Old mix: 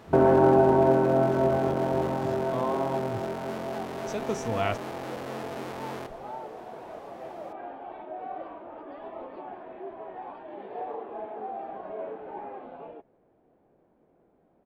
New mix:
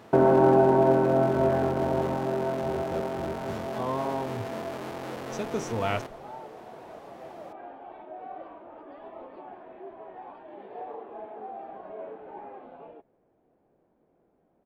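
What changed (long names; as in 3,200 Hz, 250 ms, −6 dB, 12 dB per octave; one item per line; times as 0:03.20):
speech: entry +1.25 s
second sound −3.5 dB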